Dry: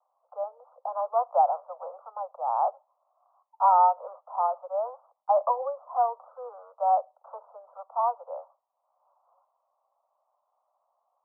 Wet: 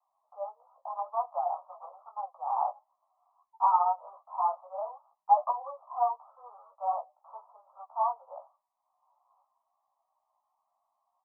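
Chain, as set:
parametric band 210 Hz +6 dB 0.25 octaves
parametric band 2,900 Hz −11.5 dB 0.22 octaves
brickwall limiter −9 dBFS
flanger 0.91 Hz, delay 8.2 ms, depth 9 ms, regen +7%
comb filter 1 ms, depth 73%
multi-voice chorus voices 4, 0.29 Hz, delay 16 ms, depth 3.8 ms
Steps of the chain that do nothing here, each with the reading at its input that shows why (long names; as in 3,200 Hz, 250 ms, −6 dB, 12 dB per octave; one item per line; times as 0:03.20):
parametric band 210 Hz: nothing at its input below 450 Hz
parametric band 2,900 Hz: nothing at its input above 1,400 Hz
brickwall limiter −9 dBFS: peak of its input −11.0 dBFS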